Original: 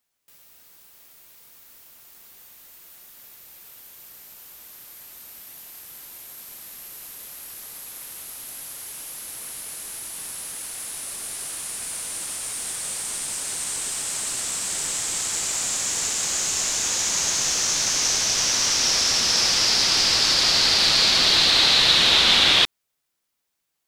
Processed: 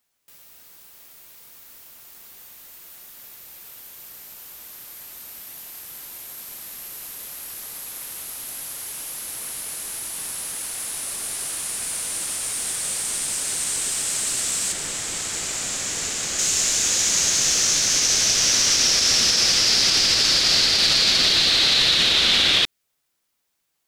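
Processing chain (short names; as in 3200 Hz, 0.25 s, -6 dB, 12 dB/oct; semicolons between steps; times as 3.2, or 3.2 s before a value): 14.72–16.39 high shelf 3600 Hz -7 dB; limiter -11.5 dBFS, peak gain reduction 7.5 dB; dynamic EQ 940 Hz, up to -7 dB, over -46 dBFS, Q 1.6; gain +3.5 dB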